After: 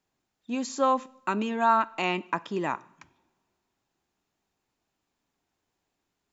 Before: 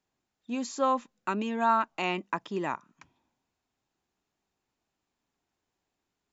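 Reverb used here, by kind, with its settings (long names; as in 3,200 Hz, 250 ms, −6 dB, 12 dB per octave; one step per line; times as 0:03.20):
coupled-rooms reverb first 0.66 s, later 2.8 s, from −25 dB, DRR 18 dB
level +2.5 dB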